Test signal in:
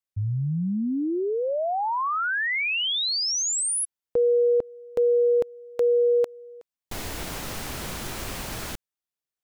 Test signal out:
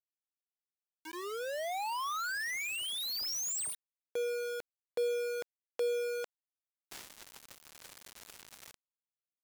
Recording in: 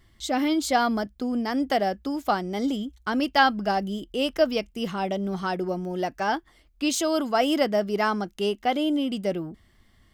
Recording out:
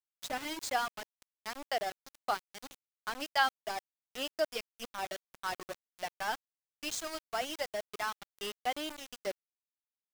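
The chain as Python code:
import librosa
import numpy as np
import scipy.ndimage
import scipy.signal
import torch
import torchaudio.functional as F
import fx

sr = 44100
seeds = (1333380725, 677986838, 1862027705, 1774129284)

y = fx.highpass(x, sr, hz=830.0, slope=6)
y = fx.dereverb_blind(y, sr, rt60_s=1.9)
y = scipy.signal.sosfilt(scipy.signal.butter(6, 9100.0, 'lowpass', fs=sr, output='sos'), y)
y = fx.rider(y, sr, range_db=5, speed_s=2.0)
y = np.where(np.abs(y) >= 10.0 ** (-29.0 / 20.0), y, 0.0)
y = F.gain(torch.from_numpy(y), -7.5).numpy()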